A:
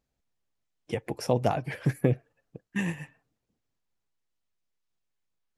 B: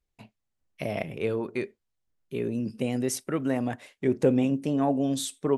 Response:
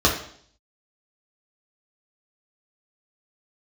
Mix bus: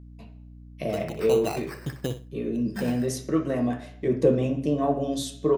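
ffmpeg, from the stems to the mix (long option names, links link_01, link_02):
-filter_complex "[0:a]lowshelf=frequency=380:gain=-4.5,acrusher=samples=13:mix=1:aa=0.000001,volume=-3.5dB,asplit=3[link_01][link_02][link_03];[link_02]volume=-12dB[link_04];[1:a]volume=-4.5dB,asplit=2[link_05][link_06];[link_06]volume=-16dB[link_07];[link_03]apad=whole_len=245991[link_08];[link_05][link_08]sidechaincompress=threshold=-32dB:ratio=8:attack=16:release=1340[link_09];[2:a]atrim=start_sample=2205[link_10];[link_07][link_10]afir=irnorm=-1:irlink=0[link_11];[link_04]aecho=0:1:61|122|183:1|0.19|0.0361[link_12];[link_01][link_09][link_11][link_12]amix=inputs=4:normalize=0,aeval=exprs='val(0)+0.00631*(sin(2*PI*60*n/s)+sin(2*PI*2*60*n/s)/2+sin(2*PI*3*60*n/s)/3+sin(2*PI*4*60*n/s)/4+sin(2*PI*5*60*n/s)/5)':channel_layout=same"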